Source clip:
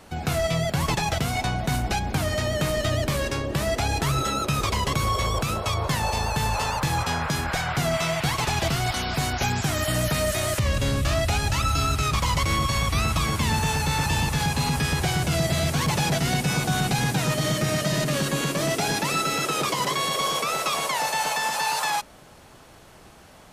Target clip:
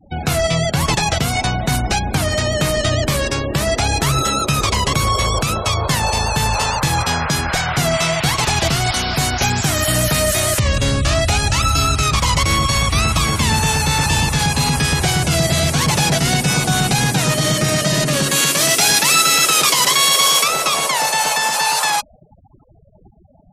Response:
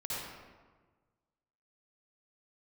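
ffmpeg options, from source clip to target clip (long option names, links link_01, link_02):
-filter_complex "[0:a]asettb=1/sr,asplit=3[link_01][link_02][link_03];[link_01]atrim=end=18.314[link_04];[link_02]atrim=start=18.31:end=20.48,asetpts=PTS-STARTPTS,afade=type=in:duration=0.004:curve=qsin,afade=type=out:start_time=2.166:duration=0.004:curve=qsin,tiltshelf=frequency=970:gain=-5.5[link_05];[link_03]atrim=start=20.476[link_06];[link_04][link_05]acrossfade=duration=0.004:curve1=hsin:curve2=qsin[link_07];[link_07][link_06]acrossfade=duration=0.004:curve1=qsin:curve2=hsin,afftfilt=real='re*gte(hypot(re,im),0.0141)':imag='im*gte(hypot(re,im),0.0141)':win_size=1024:overlap=0.75,highshelf=frequency=4300:gain=7,volume=6.5dB"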